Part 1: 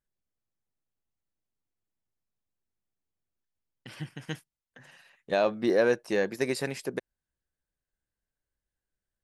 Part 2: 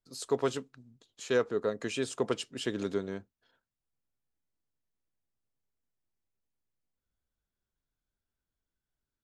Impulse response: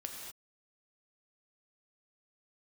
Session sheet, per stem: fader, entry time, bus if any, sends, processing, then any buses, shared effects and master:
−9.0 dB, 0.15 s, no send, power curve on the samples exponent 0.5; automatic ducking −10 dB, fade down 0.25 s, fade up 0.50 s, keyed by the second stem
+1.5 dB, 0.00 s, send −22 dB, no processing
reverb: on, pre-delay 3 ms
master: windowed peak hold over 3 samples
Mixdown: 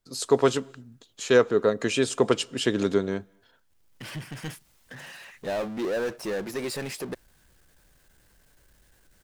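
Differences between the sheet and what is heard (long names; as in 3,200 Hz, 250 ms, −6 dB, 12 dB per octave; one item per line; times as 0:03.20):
stem 2 +1.5 dB → +8.5 dB
master: missing windowed peak hold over 3 samples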